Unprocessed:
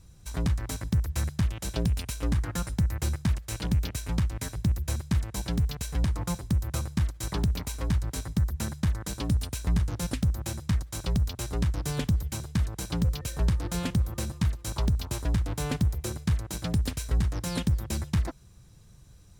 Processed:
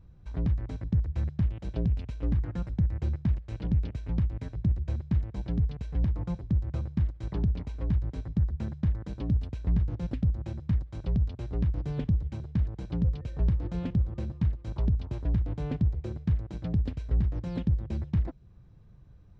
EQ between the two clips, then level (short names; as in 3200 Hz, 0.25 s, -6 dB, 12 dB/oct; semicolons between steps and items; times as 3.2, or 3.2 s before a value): dynamic EQ 1200 Hz, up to -7 dB, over -53 dBFS, Q 0.9; tape spacing loss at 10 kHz 41 dB; 0.0 dB